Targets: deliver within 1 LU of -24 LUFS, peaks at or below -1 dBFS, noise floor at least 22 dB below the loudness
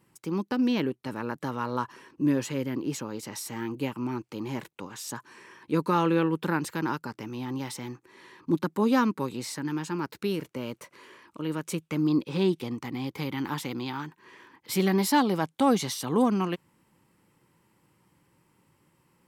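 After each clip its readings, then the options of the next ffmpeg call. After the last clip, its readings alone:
loudness -29.0 LUFS; peak level -13.0 dBFS; loudness target -24.0 LUFS
-> -af "volume=1.78"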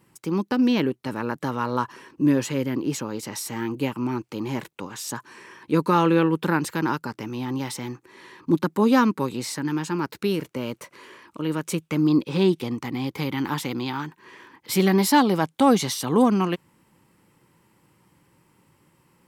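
loudness -24.0 LUFS; peak level -8.0 dBFS; noise floor -65 dBFS

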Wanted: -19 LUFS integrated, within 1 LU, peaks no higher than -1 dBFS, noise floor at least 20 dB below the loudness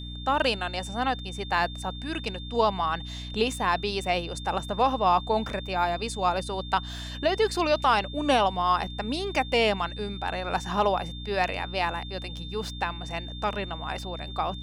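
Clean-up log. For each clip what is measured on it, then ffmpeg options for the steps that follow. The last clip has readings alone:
hum 60 Hz; highest harmonic 300 Hz; hum level -36 dBFS; steady tone 3.6 kHz; tone level -41 dBFS; loudness -27.5 LUFS; peak level -11.0 dBFS; loudness target -19.0 LUFS
-> -af "bandreject=f=60:t=h:w=6,bandreject=f=120:t=h:w=6,bandreject=f=180:t=h:w=6,bandreject=f=240:t=h:w=6,bandreject=f=300:t=h:w=6"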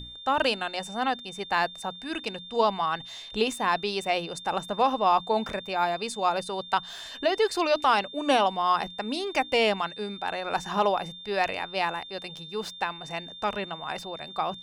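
hum not found; steady tone 3.6 kHz; tone level -41 dBFS
-> -af "bandreject=f=3600:w=30"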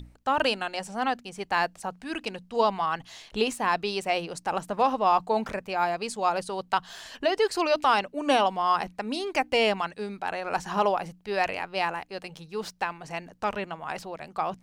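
steady tone not found; loudness -28.0 LUFS; peak level -11.5 dBFS; loudness target -19.0 LUFS
-> -af "volume=2.82"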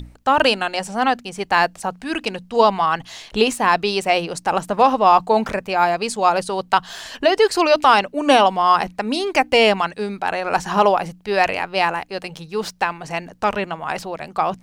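loudness -19.0 LUFS; peak level -2.5 dBFS; noise floor -48 dBFS

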